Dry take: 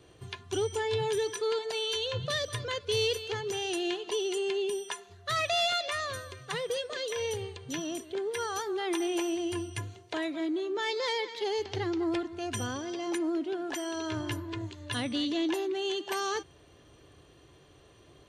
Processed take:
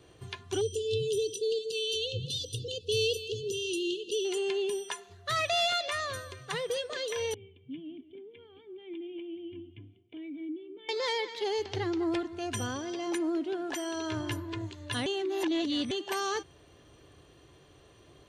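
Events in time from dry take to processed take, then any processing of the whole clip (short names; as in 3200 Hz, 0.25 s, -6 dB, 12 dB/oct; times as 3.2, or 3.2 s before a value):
0.61–4.25 brick-wall FIR band-stop 530–2600 Hz
7.34–10.89 vocal tract filter i
15.06–15.91 reverse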